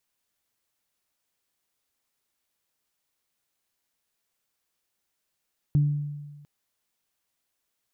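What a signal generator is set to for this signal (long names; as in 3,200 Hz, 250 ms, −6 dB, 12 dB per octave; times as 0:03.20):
harmonic partials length 0.70 s, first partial 146 Hz, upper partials −17.5 dB, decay 1.35 s, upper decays 0.66 s, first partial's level −16 dB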